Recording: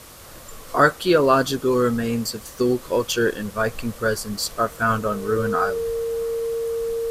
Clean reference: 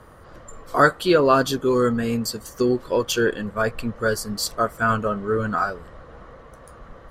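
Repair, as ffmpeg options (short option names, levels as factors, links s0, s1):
-filter_complex "[0:a]bandreject=f=460:w=30,asplit=3[s0][s1][s2];[s0]afade=t=out:st=5.86:d=0.02[s3];[s1]highpass=f=140:w=0.5412,highpass=f=140:w=1.3066,afade=t=in:st=5.86:d=0.02,afade=t=out:st=5.98:d=0.02[s4];[s2]afade=t=in:st=5.98:d=0.02[s5];[s3][s4][s5]amix=inputs=3:normalize=0,afwtdn=0.0063"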